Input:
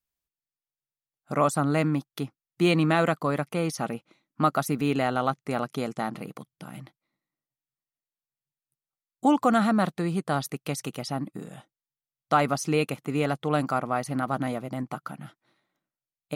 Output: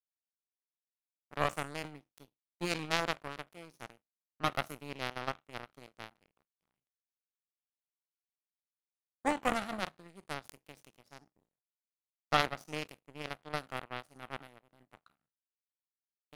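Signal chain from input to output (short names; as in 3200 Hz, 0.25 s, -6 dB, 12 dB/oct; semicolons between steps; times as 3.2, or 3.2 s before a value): spectral trails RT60 0.50 s; power-law curve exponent 3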